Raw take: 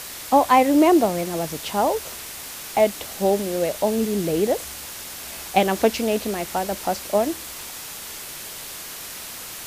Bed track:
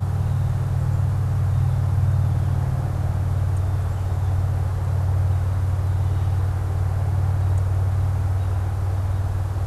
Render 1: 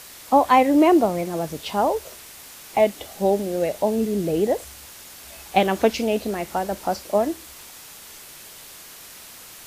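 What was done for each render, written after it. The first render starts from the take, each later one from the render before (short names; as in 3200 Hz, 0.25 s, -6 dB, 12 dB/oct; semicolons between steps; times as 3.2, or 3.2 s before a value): noise print and reduce 7 dB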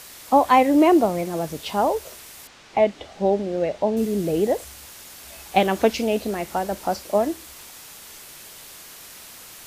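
2.47–3.97 air absorption 130 m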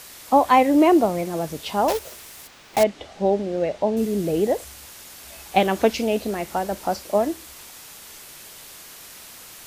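1.88–2.85 block floating point 3-bit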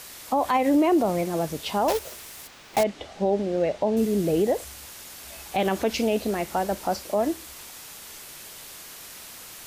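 limiter -13.5 dBFS, peak gain reduction 9.5 dB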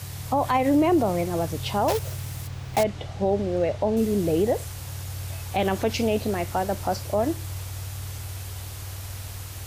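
add bed track -14 dB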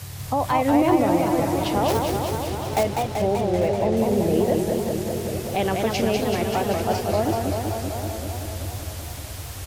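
echo 0.846 s -14.5 dB; warbling echo 0.192 s, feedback 77%, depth 206 cents, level -4 dB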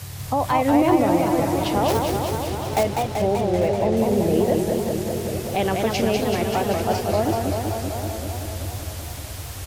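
gain +1 dB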